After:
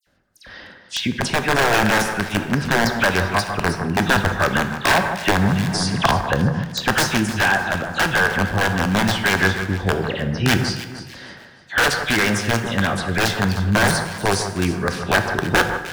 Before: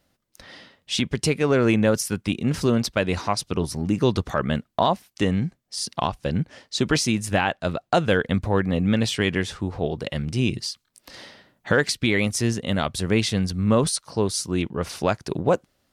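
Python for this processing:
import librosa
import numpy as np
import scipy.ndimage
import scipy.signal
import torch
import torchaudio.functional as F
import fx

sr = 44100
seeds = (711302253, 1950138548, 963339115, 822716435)

y = fx.dispersion(x, sr, late='lows', ms=71.0, hz=2800.0)
y = fx.spec_gate(y, sr, threshold_db=-30, keep='strong')
y = (np.mod(10.0 ** (13.5 / 20.0) * y + 1.0, 2.0) - 1.0) / 10.0 ** (13.5 / 20.0)
y = fx.peak_eq(y, sr, hz=1600.0, db=11.5, octaves=0.22)
y = fx.rider(y, sr, range_db=10, speed_s=2.0)
y = fx.high_shelf(y, sr, hz=8000.0, db=-8.5)
y = fx.echo_alternate(y, sr, ms=152, hz=1800.0, feedback_pct=57, wet_db=-8.5)
y = fx.rev_plate(y, sr, seeds[0], rt60_s=1.2, hf_ratio=0.65, predelay_ms=0, drr_db=7.0)
y = fx.band_squash(y, sr, depth_pct=100, at=(5.28, 6.21))
y = y * 10.0 ** (2.0 / 20.0)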